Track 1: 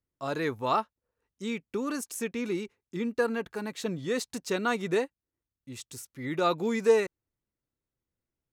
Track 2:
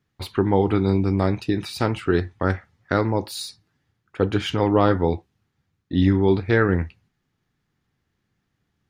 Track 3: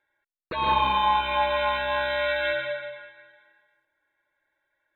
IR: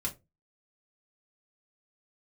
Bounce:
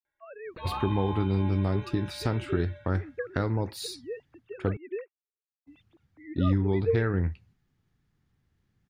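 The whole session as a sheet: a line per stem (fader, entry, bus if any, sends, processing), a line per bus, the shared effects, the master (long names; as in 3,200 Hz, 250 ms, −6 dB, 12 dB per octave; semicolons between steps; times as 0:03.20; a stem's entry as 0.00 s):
−10.0 dB, 0.00 s, no send, three sine waves on the formant tracks
−4.5 dB, 0.45 s, muted 0:04.77–0:05.67, no send, downward compressor 2 to 1, threshold −27 dBFS, peak gain reduction 8.5 dB
−9.0 dB, 0.05 s, no send, automatic ducking −13 dB, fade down 1.70 s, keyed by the first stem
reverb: not used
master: low-shelf EQ 160 Hz +11 dB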